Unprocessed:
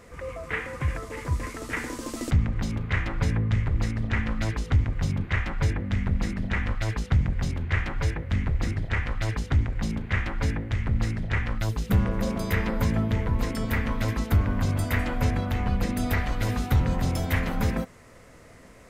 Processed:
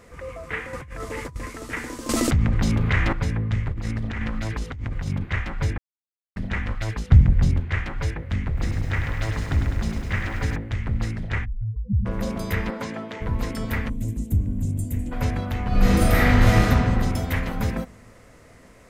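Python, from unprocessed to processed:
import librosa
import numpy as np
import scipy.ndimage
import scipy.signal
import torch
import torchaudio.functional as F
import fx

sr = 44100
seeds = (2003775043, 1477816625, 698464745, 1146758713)

y = fx.over_compress(x, sr, threshold_db=-35.0, ratio=-1.0, at=(0.73, 1.36))
y = fx.env_flatten(y, sr, amount_pct=70, at=(2.09, 3.13))
y = fx.over_compress(y, sr, threshold_db=-27.0, ratio=-1.0, at=(3.72, 5.24))
y = fx.low_shelf(y, sr, hz=290.0, db=10.0, at=(7.09, 7.6))
y = fx.echo_crushed(y, sr, ms=102, feedback_pct=80, bits=9, wet_db=-7, at=(8.47, 10.56))
y = fx.spec_expand(y, sr, power=3.3, at=(11.44, 12.05), fade=0.02)
y = fx.bandpass_edges(y, sr, low_hz=fx.line((12.7, 210.0), (13.2, 440.0)), high_hz=7700.0, at=(12.7, 13.2), fade=0.02)
y = fx.curve_eq(y, sr, hz=(270.0, 1300.0, 2700.0, 4900.0, 7500.0, 12000.0), db=(0, -29, -17, -18, 3, -2), at=(13.88, 15.11), fade=0.02)
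y = fx.reverb_throw(y, sr, start_s=15.68, length_s=0.96, rt60_s=2.2, drr_db=-10.0)
y = fx.edit(y, sr, fx.silence(start_s=5.78, length_s=0.58), tone=tone)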